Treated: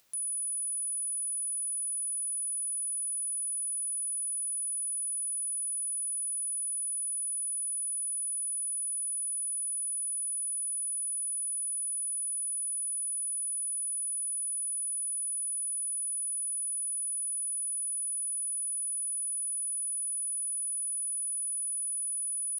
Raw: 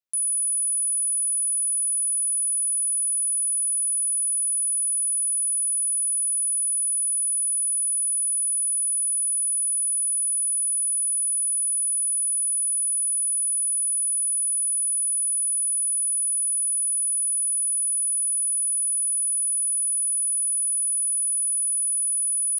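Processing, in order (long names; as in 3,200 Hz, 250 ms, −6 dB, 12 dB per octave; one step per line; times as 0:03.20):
brickwall limiter −26.5 dBFS, peak gain reduction 5.5 dB
upward compression, threshold −42 dBFS
level −4 dB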